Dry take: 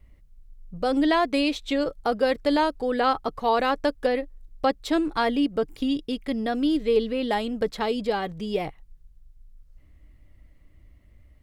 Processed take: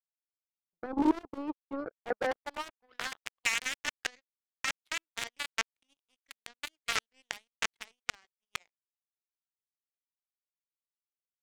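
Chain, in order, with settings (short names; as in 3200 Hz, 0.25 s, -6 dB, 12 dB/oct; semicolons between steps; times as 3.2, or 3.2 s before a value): wrapped overs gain 16 dB; band-pass sweep 360 Hz -> 2200 Hz, 1.78–3.29; power-law curve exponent 3; gain +8.5 dB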